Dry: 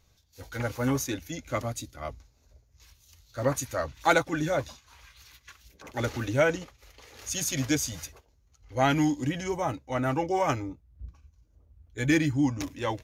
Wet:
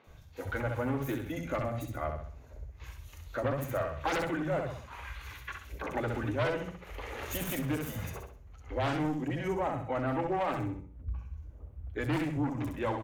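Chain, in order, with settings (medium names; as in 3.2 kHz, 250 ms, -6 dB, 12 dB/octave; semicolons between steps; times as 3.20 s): self-modulated delay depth 0.33 ms; peaking EQ 5.1 kHz -12 dB 1.2 oct; on a send: feedback delay 65 ms, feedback 31%, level -7 dB; on the sum: sine folder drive 9 dB, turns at -11 dBFS; treble shelf 6.8 kHz -11.5 dB; compression 3:1, threshold -34 dBFS, peak gain reduction 15 dB; three bands offset in time mids, highs, lows 40/70 ms, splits 200/4500 Hz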